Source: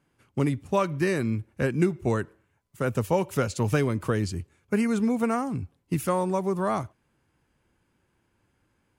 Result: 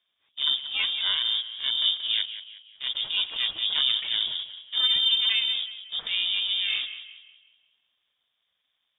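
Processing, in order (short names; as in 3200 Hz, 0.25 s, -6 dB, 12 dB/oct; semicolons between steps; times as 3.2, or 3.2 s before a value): bin magnitudes rounded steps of 15 dB; dynamic EQ 260 Hz, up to +5 dB, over -37 dBFS, Q 1.5; transient shaper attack -11 dB, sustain +6 dB; in parallel at -5.5 dB: requantised 6-bit, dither none; on the sum: ring modulator 240 Hz; on a send: tape echo 0.183 s, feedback 46%, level -9 dB, low-pass 2100 Hz; on the sum: inverted band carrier 3600 Hz; gain -3.5 dB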